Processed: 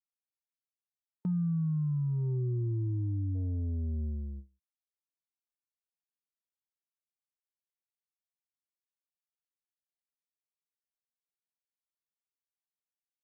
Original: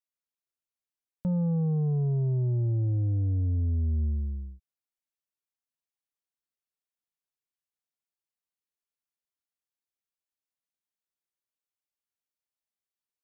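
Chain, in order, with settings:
time-frequency box erased 0:00.47–0:03.35, 390–890 Hz
noise gate with hold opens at −28 dBFS
low-shelf EQ 130 Hz −9.5 dB

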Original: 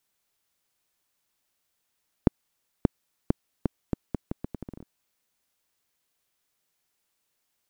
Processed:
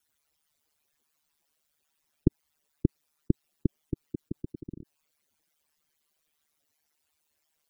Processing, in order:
expanding power law on the bin magnitudes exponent 3
ring modulation 75 Hz
level +3.5 dB

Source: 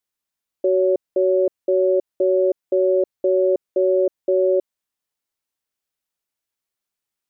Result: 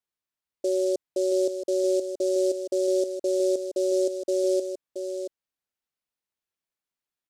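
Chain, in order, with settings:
on a send: single-tap delay 676 ms −7.5 dB
on the sum: short delay modulated by noise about 6,000 Hz, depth 0.034 ms
level −7 dB

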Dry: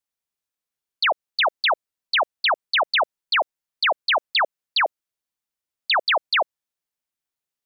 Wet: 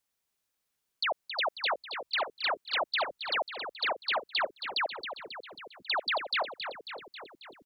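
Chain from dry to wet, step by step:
output level in coarse steps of 18 dB
echo with shifted repeats 271 ms, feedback 63%, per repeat −58 Hz, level −9 dB
level +7 dB

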